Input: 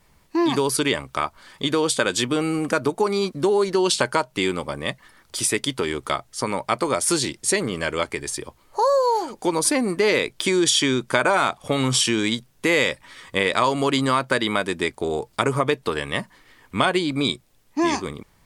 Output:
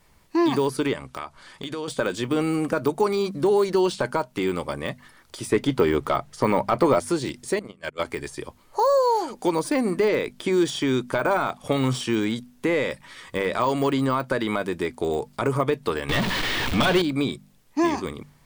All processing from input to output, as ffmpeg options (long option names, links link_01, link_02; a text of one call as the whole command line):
ffmpeg -i in.wav -filter_complex "[0:a]asettb=1/sr,asplit=3[link_01][link_02][link_03];[link_01]atrim=end=0.934[link_04];[link_02]atrim=start=0.93:end=1.88,asetpts=PTS-STARTPTS,afade=type=in:duration=0.004:curve=qsin,afade=type=out:start_time=0.946:duration=0.004:curve=qsin,lowpass=frequency=11000:width=0.5412,lowpass=frequency=11000:width=1.3066,acompressor=threshold=-29dB:ratio=4:attack=3.2:release=140:knee=1:detection=peak[link_05];[link_03]atrim=start=1.876[link_06];[link_04][link_05]acrossfade=duration=0.004:curve1=hsin:curve2=qsin[link_07];[link_07][link_06]acrossfade=duration=0.004:curve1=qsin:curve2=hsin,asettb=1/sr,asplit=3[link_08][link_09][link_10];[link_08]atrim=end=5.524[link_11];[link_09]atrim=start=5.52:end=7,asetpts=PTS-STARTPTS,afade=type=in:duration=0.004:curve=qsin,afade=type=out:start_time=1.476:duration=0.004:curve=qsin,acontrast=73,highshelf=frequency=4100:gain=-9.5[link_12];[link_10]atrim=start=6.996[link_13];[link_11][link_12]acrossfade=duration=0.004:curve1=hsin:curve2=qsin[link_14];[link_14][link_13]acrossfade=duration=0.004:curve1=qsin:curve2=hsin,asettb=1/sr,asplit=3[link_15][link_16][link_17];[link_15]atrim=end=7.594[link_18];[link_16]atrim=start=7.59:end=8.05,asetpts=PTS-STARTPTS,afade=type=in:duration=0.004:curve=qsin,afade=type=out:start_time=0.456:duration=0.004:curve=qsin,bandreject=frequency=60:width_type=h:width=6,bandreject=frequency=120:width_type=h:width=6,bandreject=frequency=180:width_type=h:width=6,bandreject=frequency=240:width_type=h:width=6,bandreject=frequency=300:width_type=h:width=6,bandreject=frequency=360:width_type=h:width=6,agate=range=-36dB:threshold=-24dB:ratio=16:release=100:detection=peak,acompressor=mode=upward:threshold=-38dB:ratio=2.5:attack=3.2:release=140:knee=2.83:detection=peak[link_19];[link_17]atrim=start=8.046[link_20];[link_18][link_19]acrossfade=duration=0.004:curve1=hsin:curve2=qsin[link_21];[link_21][link_20]acrossfade=duration=0.004:curve1=qsin:curve2=hsin,asettb=1/sr,asplit=3[link_22][link_23][link_24];[link_22]atrim=end=16.094[link_25];[link_23]atrim=start=16.09:end=17.02,asetpts=PTS-STARTPTS,afade=type=in:duration=0.004:curve=qsin,afade=type=out:start_time=0.926:duration=0.004:curve=qsin,aeval=exprs='val(0)+0.5*0.126*sgn(val(0))':channel_layout=same,equalizer=frequency=3500:width_type=o:width=1.6:gain=14.5[link_26];[link_24]atrim=start=17.016[link_27];[link_25][link_26]acrossfade=duration=0.004:curve1=hsin:curve2=qsin[link_28];[link_28][link_27]acrossfade=duration=0.004:curve1=qsin:curve2=hsin,deesser=0.85,bandreject=frequency=49.18:width_type=h:width=4,bandreject=frequency=98.36:width_type=h:width=4,bandreject=frequency=147.54:width_type=h:width=4,bandreject=frequency=196.72:width_type=h:width=4,bandreject=frequency=245.9:width_type=h:width=4" out.wav